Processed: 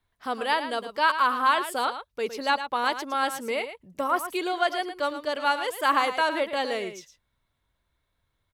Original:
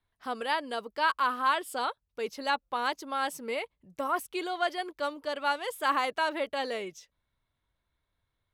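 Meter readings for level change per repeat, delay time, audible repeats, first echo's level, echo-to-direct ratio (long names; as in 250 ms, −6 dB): repeats not evenly spaced, 111 ms, 1, −10.5 dB, −10.5 dB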